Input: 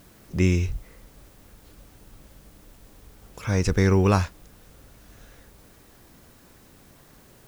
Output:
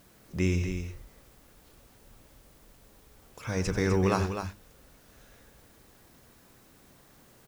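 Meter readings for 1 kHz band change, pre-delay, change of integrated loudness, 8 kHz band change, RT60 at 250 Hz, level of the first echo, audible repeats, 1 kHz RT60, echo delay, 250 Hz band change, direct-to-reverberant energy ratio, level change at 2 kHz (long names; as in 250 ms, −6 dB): −4.0 dB, no reverb audible, −6.5 dB, −4.0 dB, no reverb audible, −12.5 dB, 2, no reverb audible, 90 ms, −5.5 dB, no reverb audible, −4.0 dB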